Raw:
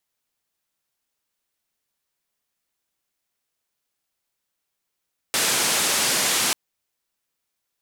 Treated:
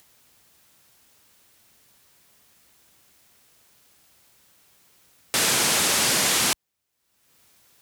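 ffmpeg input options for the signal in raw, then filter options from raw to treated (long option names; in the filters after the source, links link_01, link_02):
-f lavfi -i "anoisesrc=color=white:duration=1.19:sample_rate=44100:seed=1,highpass=frequency=150,lowpass=frequency=9800,volume=-13.2dB"
-af "highpass=58,lowshelf=frequency=180:gain=8,acompressor=mode=upward:threshold=-41dB:ratio=2.5"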